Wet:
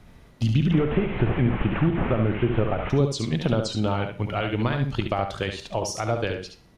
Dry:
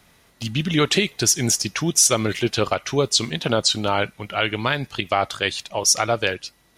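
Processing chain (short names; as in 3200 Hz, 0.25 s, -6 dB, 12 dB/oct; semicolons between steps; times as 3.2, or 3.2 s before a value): 0.71–2.9 delta modulation 16 kbps, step -24.5 dBFS; compressor 3:1, threshold -26 dBFS, peak gain reduction 10.5 dB; tilt -3 dB/oct; echo 71 ms -6.5 dB; reverb RT60 0.45 s, pre-delay 38 ms, DRR 13.5 dB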